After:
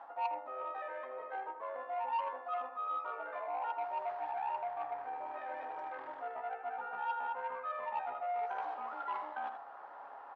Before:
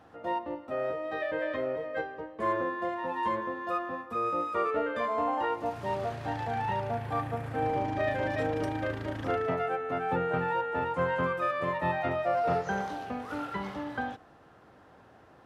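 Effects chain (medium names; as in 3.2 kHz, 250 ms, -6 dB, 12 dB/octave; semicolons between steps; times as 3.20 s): comb 7.2 ms, depth 65%; reverse; compression 16:1, threshold -40 dBFS, peak gain reduction 19.5 dB; reverse; granular stretch 0.67×, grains 30 ms; ladder band-pass 990 Hz, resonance 55%; on a send: delay 80 ms -7.5 dB; on the sum: transformer saturation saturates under 1.1 kHz; trim +16 dB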